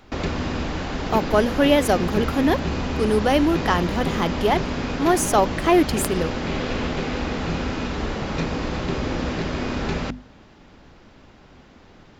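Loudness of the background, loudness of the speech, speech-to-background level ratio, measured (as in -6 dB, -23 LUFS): -26.5 LUFS, -21.5 LUFS, 5.0 dB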